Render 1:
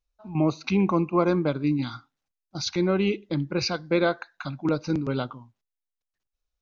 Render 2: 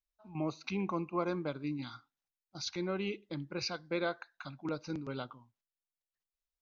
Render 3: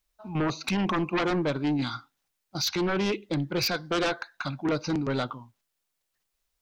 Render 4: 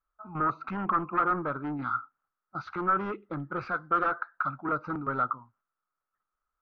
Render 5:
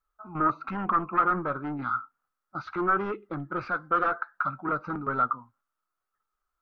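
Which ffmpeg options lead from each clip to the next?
-af "lowshelf=f=490:g=-5.5,volume=0.355"
-af "aeval=exprs='0.1*sin(PI/2*3.98*val(0)/0.1)':c=same,volume=0.794"
-af "lowpass=f=1300:t=q:w=12,volume=0.398"
-af "flanger=delay=2.2:depth=3.3:regen=70:speed=0.32:shape=triangular,volume=2"

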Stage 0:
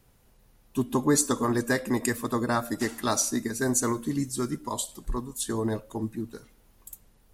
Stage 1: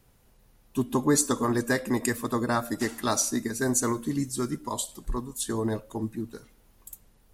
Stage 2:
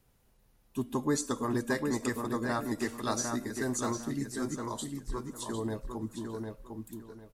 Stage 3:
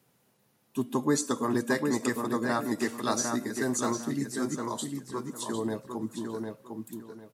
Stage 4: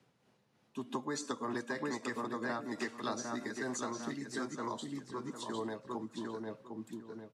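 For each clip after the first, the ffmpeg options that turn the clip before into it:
-af anull
-filter_complex "[0:a]acrossover=split=7600[s0][s1];[s1]acompressor=threshold=0.00891:ratio=4:attack=1:release=60[s2];[s0][s2]amix=inputs=2:normalize=0,asplit=2[s3][s4];[s4]adelay=753,lowpass=f=4100:p=1,volume=0.596,asplit=2[s5][s6];[s6]adelay=753,lowpass=f=4100:p=1,volume=0.26,asplit=2[s7][s8];[s8]adelay=753,lowpass=f=4100:p=1,volume=0.26,asplit=2[s9][s10];[s10]adelay=753,lowpass=f=4100:p=1,volume=0.26[s11];[s5][s7][s9][s11]amix=inputs=4:normalize=0[s12];[s3][s12]amix=inputs=2:normalize=0,volume=0.473"
-af "highpass=f=130:w=0.5412,highpass=f=130:w=1.3066,volume=1.5"
-filter_complex "[0:a]lowpass=5100,tremolo=f=3.2:d=0.44,acrossover=split=190|580[s0][s1][s2];[s0]acompressor=threshold=0.00224:ratio=4[s3];[s1]acompressor=threshold=0.00891:ratio=4[s4];[s2]acompressor=threshold=0.0126:ratio=4[s5];[s3][s4][s5]amix=inputs=3:normalize=0"

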